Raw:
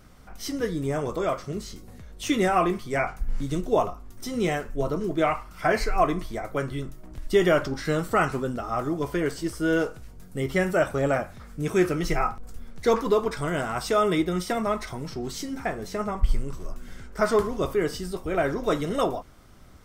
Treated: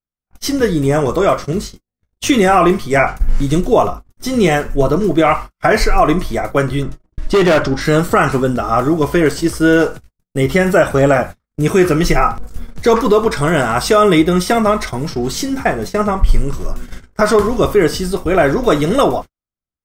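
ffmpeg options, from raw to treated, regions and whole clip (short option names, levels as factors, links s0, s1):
-filter_complex "[0:a]asettb=1/sr,asplit=3[s0][s1][s2];[s0]atrim=end=6.834[s3];[s1]atrim=start=6.83:end=7.81,asetpts=PTS-STARTPTS,afade=t=in:d=0.004:c=qsin,afade=t=out:st=0.976:d=0.004:c=qsin,adynamicsmooth=sensitivity=1.5:basefreq=7200,asoftclip=type=hard:threshold=0.0841[s4];[s2]atrim=start=7.806[s5];[s3][s4]acrossfade=d=0.004:c1=hsin:c2=qsin[s6];[s6][s5]acrossfade=d=0.004:c1=qsin:c2=hsin,agate=range=0.00158:threshold=0.0158:ratio=16:detection=peak,alimiter=level_in=5.31:limit=0.891:release=50:level=0:latency=1,volume=0.891"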